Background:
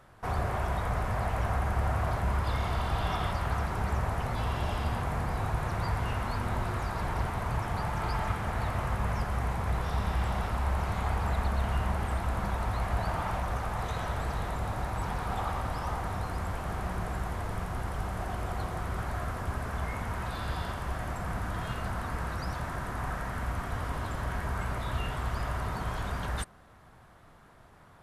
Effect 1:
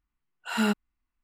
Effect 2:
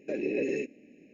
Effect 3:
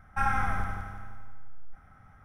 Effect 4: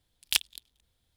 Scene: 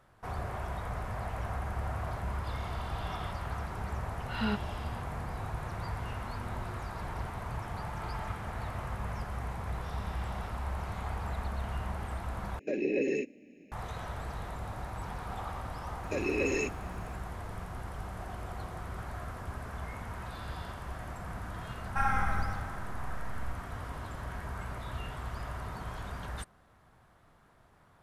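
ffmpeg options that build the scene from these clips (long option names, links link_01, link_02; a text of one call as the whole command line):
ffmpeg -i bed.wav -i cue0.wav -i cue1.wav -i cue2.wav -filter_complex "[2:a]asplit=2[link_01][link_02];[0:a]volume=-6.5dB[link_03];[1:a]aresample=11025,aresample=44100[link_04];[link_02]crystalizer=i=5.5:c=0[link_05];[link_03]asplit=2[link_06][link_07];[link_06]atrim=end=12.594[link_08];[link_01]atrim=end=1.13[link_09];[link_07]atrim=start=13.716[link_10];[link_04]atrim=end=1.23,asetpts=PTS-STARTPTS,volume=-7dB,afade=type=in:duration=0.004:curve=hsin,afade=type=out:start_time=1.226:duration=0.004:curve=hsin,adelay=3830[link_11];[link_05]atrim=end=1.13,asetpts=PTS-STARTPTS,volume=-2dB,afade=type=in:duration=0.004:curve=hsin,afade=type=out:start_time=1.126:duration=0.004:curve=hsin,adelay=16030[link_12];[3:a]atrim=end=2.24,asetpts=PTS-STARTPTS,volume=-2dB,afade=type=in:duration=0.004:curve=hsin,afade=type=out:start_time=2.236:duration=0.004:curve=hsin,adelay=21790[link_13];[link_08][link_09]acrossfade=duration=0.004:curve1=hsin:curve2=hsin[link_14];[link_14][link_10]acrossfade=duration=0.004:curve1=hsin:curve2=hsin[link_15];[link_15][link_11][link_12][link_13]amix=inputs=4:normalize=0" out.wav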